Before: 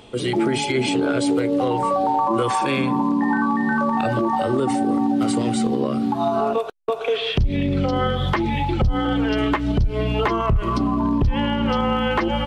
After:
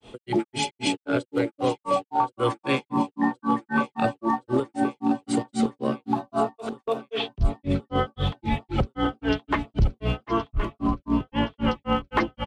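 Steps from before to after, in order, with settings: granulator 186 ms, grains 3.8 per s, spray 13 ms, pitch spread up and down by 0 st; feedback delay 1071 ms, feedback 45%, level -13 dB

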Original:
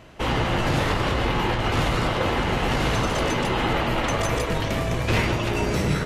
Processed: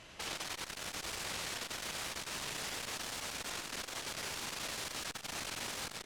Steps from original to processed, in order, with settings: pre-emphasis filter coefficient 0.9; peak limiter -32 dBFS, peak gain reduction 10 dB; level rider gain up to 6 dB; integer overflow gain 38.5 dB; distance through air 58 m; doubling 42 ms -13 dB; feedback delay 93 ms, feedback 43%, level -9 dB; transformer saturation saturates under 480 Hz; trim +8 dB

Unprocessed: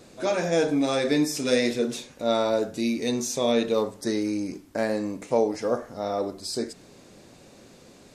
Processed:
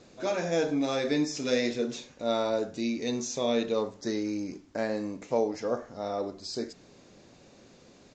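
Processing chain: resampled via 16 kHz; trim -4.5 dB

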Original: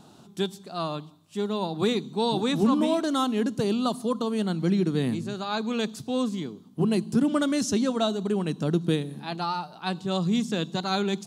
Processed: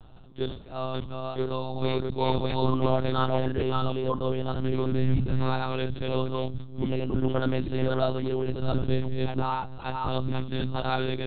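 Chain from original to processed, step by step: chunks repeated in reverse 349 ms, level -2 dB; resonant low shelf 140 Hz +10.5 dB, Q 3; harmonic-percussive split harmonic +9 dB; monotone LPC vocoder at 8 kHz 130 Hz; decay stretcher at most 110 dB/s; trim -8 dB

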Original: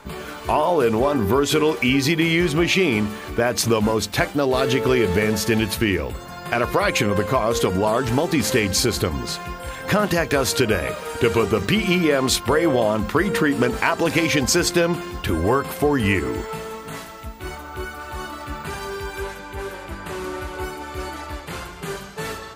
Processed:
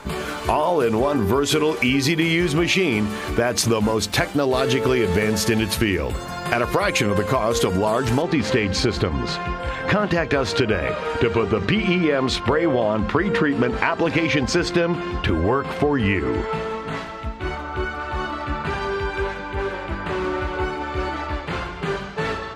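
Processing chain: low-pass 12 kHz 12 dB/octave, from 8.22 s 3.5 kHz; compression 3:1, threshold -23 dBFS, peak gain reduction 8 dB; trim +5.5 dB

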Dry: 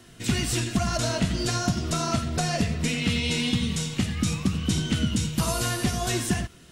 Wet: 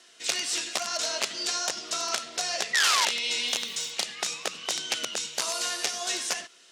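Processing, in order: 2.73–3.06 s: painted sound fall 880–2000 Hz -21 dBFS; integer overflow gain 15.5 dB; Chebyshev band-pass 450–5900 Hz, order 2; 3.47–3.90 s: crackle 510 per s -40 dBFS; tilt EQ +3 dB/octave; trim -4 dB

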